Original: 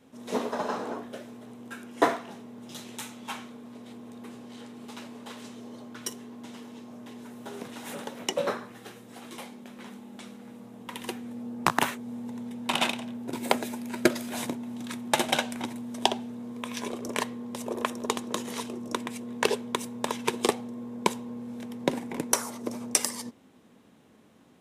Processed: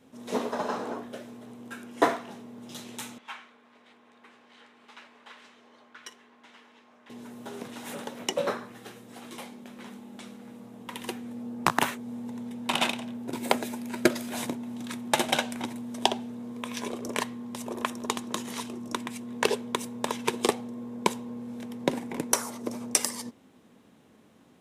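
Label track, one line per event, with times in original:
3.180000	7.100000	band-pass 1800 Hz, Q 1.1
17.200000	19.330000	bell 490 Hz -5.5 dB

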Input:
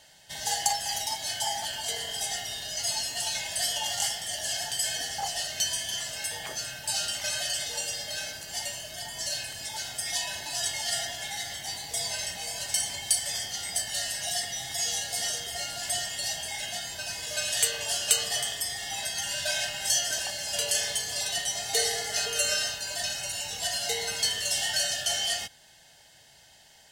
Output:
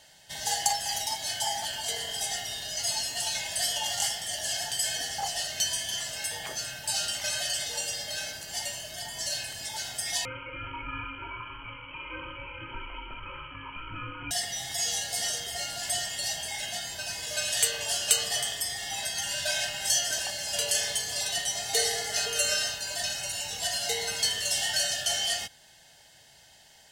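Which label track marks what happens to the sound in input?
10.250000	14.310000	inverted band carrier 3100 Hz

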